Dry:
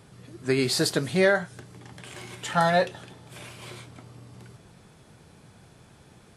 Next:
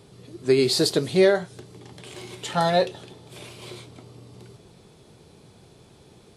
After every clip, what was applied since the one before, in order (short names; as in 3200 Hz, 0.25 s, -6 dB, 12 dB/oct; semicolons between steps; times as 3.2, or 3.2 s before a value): fifteen-band EQ 400 Hz +7 dB, 1600 Hz -6 dB, 4000 Hz +5 dB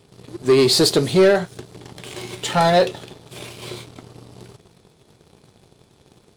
sample leveller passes 2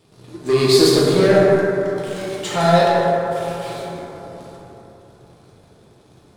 plate-style reverb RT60 3.5 s, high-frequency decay 0.3×, DRR -6 dB; gain -4.5 dB